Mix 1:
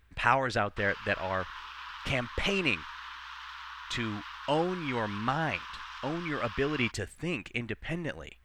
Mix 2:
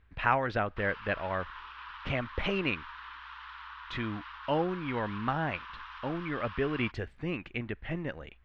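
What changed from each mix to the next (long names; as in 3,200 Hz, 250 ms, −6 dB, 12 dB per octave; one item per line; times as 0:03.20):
master: add high-frequency loss of the air 280 metres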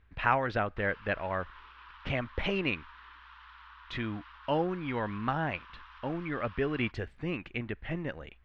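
background −7.0 dB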